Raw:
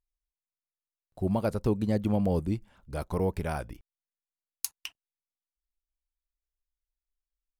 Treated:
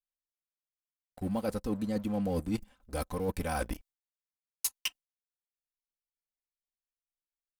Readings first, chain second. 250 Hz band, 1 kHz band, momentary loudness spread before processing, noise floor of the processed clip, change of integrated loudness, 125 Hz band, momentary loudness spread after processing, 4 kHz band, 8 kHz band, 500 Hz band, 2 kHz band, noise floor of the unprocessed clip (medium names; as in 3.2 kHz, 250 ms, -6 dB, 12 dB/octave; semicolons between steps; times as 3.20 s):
-3.5 dB, -2.0 dB, 13 LU, under -85 dBFS, -4.0 dB, -7.5 dB, 7 LU, +4.5 dB, +2.5 dB, -4.5 dB, +1.5 dB, under -85 dBFS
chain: gate with hold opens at -51 dBFS; treble shelf 4.3 kHz +7 dB; comb 3.9 ms, depth 71%; waveshaping leveller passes 2; reverse; compression 12:1, threshold -29 dBFS, peak gain reduction 16.5 dB; reverse